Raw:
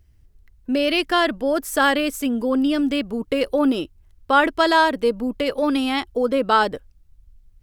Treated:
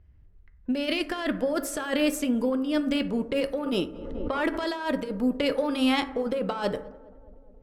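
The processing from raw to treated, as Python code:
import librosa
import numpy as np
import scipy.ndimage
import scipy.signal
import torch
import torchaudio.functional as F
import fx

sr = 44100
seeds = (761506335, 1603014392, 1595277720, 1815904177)

y = fx.diode_clip(x, sr, knee_db=-7.0)
y = fx.env_lowpass(y, sr, base_hz=2000.0, full_db=-19.5)
y = fx.over_compress(y, sr, threshold_db=-22.0, ratio=-0.5)
y = fx.echo_tape(y, sr, ms=210, feedback_pct=82, wet_db=-22.0, lp_hz=1100.0, drive_db=6.0, wow_cents=26)
y = fx.rev_fdn(y, sr, rt60_s=0.82, lf_ratio=0.75, hf_ratio=0.35, size_ms=33.0, drr_db=8.0)
y = fx.pre_swell(y, sr, db_per_s=37.0, at=(3.66, 4.72))
y = y * librosa.db_to_amplitude(-4.0)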